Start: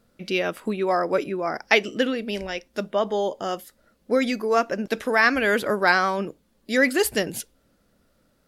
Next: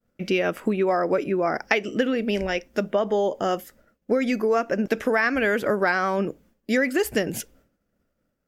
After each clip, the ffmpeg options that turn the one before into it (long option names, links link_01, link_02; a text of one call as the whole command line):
ffmpeg -i in.wav -af "agate=range=-33dB:threshold=-53dB:ratio=3:detection=peak,equalizer=frequency=1000:width_type=o:width=0.67:gain=-4,equalizer=frequency=4000:width_type=o:width=0.67:gain=-10,equalizer=frequency=10000:width_type=o:width=0.67:gain=-9,acompressor=threshold=-25dB:ratio=6,volume=6.5dB" out.wav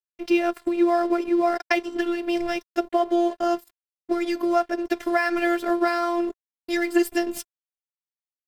ffmpeg -i in.wav -af "aeval=exprs='sgn(val(0))*max(abs(val(0))-0.00891,0)':channel_layout=same,afftfilt=real='hypot(re,im)*cos(PI*b)':imag='0':win_size=512:overlap=0.75,aecho=1:1:5.6:0.32,volume=3.5dB" out.wav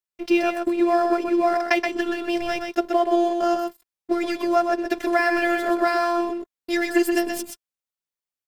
ffmpeg -i in.wav -af "aecho=1:1:126:0.531,volume=1.5dB" out.wav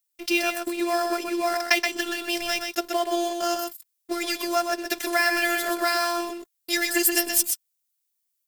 ffmpeg -i in.wav -af "crystalizer=i=9.5:c=0,volume=-8dB" out.wav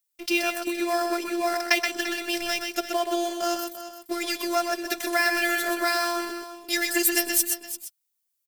ffmpeg -i in.wav -af "aecho=1:1:343:0.237,volume=-1dB" out.wav